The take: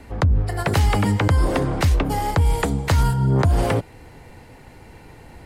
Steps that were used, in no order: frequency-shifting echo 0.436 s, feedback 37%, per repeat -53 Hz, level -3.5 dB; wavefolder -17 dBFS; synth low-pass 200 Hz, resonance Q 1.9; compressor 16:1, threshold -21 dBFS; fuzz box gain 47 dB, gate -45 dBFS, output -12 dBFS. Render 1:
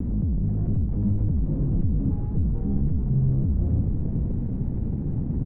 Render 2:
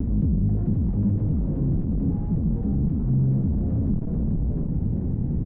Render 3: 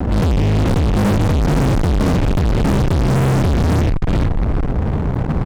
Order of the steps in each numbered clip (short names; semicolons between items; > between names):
fuzz box > wavefolder > compressor > synth low-pass > frequency-shifting echo; wavefolder > frequency-shifting echo > fuzz box > compressor > synth low-pass; compressor > wavefolder > synth low-pass > frequency-shifting echo > fuzz box